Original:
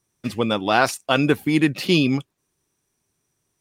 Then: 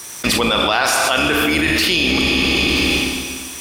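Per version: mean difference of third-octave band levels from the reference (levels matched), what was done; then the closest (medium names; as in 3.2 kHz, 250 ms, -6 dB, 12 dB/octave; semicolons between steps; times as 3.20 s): 12.0 dB: octave divider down 2 oct, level +4 dB; high-pass 1.3 kHz 6 dB/octave; Schroeder reverb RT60 1.7 s, combs from 27 ms, DRR 4 dB; level flattener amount 100%; trim +2.5 dB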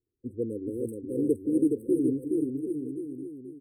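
16.0 dB: local Wiener filter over 25 samples; brick-wall FIR band-stop 530–8000 Hz; static phaser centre 650 Hz, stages 6; on a send: bouncing-ball echo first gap 420 ms, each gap 0.85×, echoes 5; on the sum: trim -4.5 dB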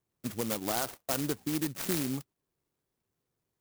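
9.0 dB: compression 3:1, threshold -22 dBFS, peak gain reduction 8 dB; four-pole ladder low-pass 4.7 kHz, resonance 40%; sample-and-hold 7×; sampling jitter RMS 0.12 ms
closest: third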